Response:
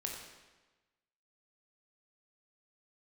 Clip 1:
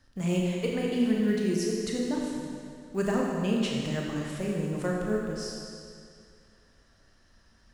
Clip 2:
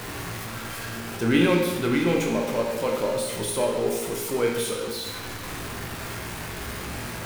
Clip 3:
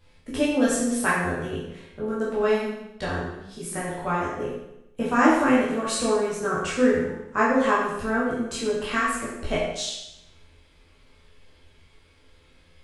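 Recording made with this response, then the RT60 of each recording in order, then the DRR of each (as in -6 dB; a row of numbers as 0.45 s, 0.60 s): 2; 2.3 s, 1.2 s, 0.85 s; -2.5 dB, -0.5 dB, -8.0 dB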